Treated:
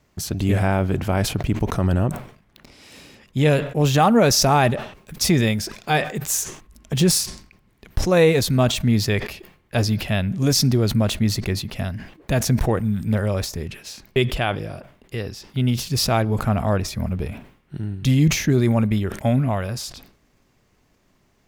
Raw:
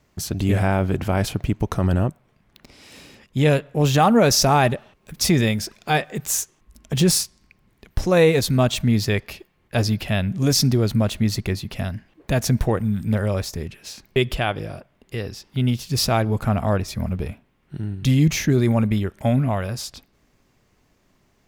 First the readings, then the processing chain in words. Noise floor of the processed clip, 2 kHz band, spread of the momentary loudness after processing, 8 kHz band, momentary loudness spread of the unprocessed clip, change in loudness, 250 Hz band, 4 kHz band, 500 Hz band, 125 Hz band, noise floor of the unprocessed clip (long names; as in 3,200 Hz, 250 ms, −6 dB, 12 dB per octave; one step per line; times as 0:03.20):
−62 dBFS, +0.5 dB, 14 LU, +0.5 dB, 14 LU, +0.5 dB, 0.0 dB, +0.5 dB, 0.0 dB, +0.5 dB, −63 dBFS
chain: level that may fall only so fast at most 110 dB per second